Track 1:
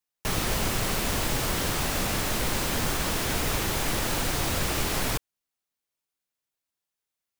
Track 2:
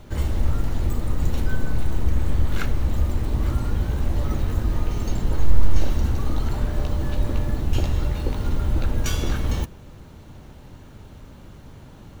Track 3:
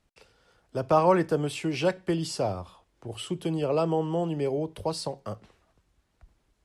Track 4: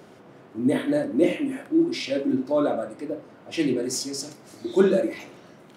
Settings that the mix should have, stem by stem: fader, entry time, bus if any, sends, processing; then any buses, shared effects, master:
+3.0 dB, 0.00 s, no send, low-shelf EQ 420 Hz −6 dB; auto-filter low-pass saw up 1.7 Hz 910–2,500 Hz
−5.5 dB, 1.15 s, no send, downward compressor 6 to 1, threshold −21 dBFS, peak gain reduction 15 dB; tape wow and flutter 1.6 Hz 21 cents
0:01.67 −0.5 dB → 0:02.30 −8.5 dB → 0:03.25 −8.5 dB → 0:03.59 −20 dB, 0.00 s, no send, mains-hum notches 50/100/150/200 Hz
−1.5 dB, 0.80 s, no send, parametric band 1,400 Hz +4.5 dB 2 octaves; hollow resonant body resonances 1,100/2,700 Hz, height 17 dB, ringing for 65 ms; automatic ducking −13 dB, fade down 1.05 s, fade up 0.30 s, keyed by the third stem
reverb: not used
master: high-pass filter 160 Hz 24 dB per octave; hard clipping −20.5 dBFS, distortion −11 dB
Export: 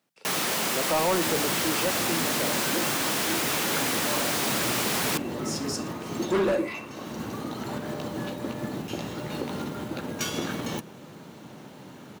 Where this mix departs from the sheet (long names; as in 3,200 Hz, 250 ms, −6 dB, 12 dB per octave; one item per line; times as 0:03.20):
stem 1: missing auto-filter low-pass saw up 1.7 Hz 910–2,500 Hz
stem 2 −5.5 dB → +3.5 dB
stem 4: entry 0.80 s → 1.55 s